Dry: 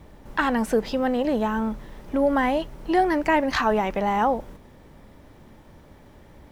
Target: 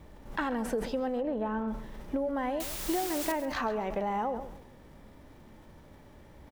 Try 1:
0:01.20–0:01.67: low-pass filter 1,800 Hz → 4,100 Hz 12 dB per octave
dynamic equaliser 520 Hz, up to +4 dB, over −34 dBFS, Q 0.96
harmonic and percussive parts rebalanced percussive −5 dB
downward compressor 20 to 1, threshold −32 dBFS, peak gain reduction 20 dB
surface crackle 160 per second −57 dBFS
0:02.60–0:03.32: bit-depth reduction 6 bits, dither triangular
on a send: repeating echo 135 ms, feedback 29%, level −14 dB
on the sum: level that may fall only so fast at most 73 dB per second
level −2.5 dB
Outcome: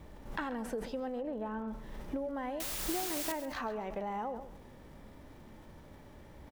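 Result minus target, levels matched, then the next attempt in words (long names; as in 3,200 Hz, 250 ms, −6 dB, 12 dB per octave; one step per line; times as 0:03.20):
downward compressor: peak gain reduction +6 dB
0:01.20–0:01.67: low-pass filter 1,800 Hz → 4,100 Hz 12 dB per octave
dynamic equaliser 520 Hz, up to +4 dB, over −34 dBFS, Q 0.96
harmonic and percussive parts rebalanced percussive −5 dB
downward compressor 20 to 1, threshold −25.5 dBFS, peak gain reduction 14 dB
surface crackle 160 per second −57 dBFS
0:02.60–0:03.32: bit-depth reduction 6 bits, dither triangular
on a send: repeating echo 135 ms, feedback 29%, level −14 dB
on the sum: level that may fall only so fast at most 73 dB per second
level −2.5 dB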